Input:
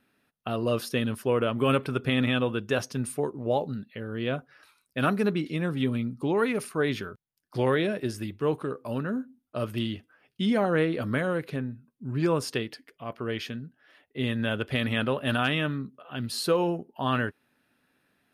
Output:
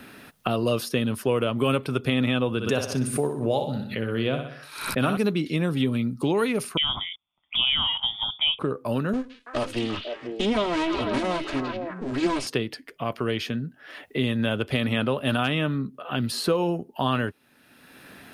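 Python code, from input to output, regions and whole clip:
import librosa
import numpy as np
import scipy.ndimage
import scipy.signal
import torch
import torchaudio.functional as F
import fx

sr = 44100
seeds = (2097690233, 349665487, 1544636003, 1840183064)

y = fx.chain(x, sr, fx.cheby1_lowpass(hz=12000.0, order=2),
    fx.echo_feedback(ms=62, feedback_pct=44, wet_db=-7.5),
    fx.pre_swell(db_per_s=110.0), at=(2.5, 5.17))
y = fx.chain(y, sr, fx.freq_invert(carrier_hz=3500),
    fx.fixed_phaser(hz=1700.0, stages=6), at=(6.77, 8.59))
y = fx.chain(y, sr, fx.lower_of_two(delay_ms=3.1),
    fx.lowpass(hz=8700.0, slope=24),
    fx.echo_stepped(ms=166, hz=3400.0, octaves=-1.4, feedback_pct=70, wet_db=-2.0), at=(9.13, 12.47))
y = fx.dynamic_eq(y, sr, hz=1700.0, q=2.5, threshold_db=-45.0, ratio=4.0, max_db=-5)
y = fx.band_squash(y, sr, depth_pct=70)
y = F.gain(torch.from_numpy(y), 3.0).numpy()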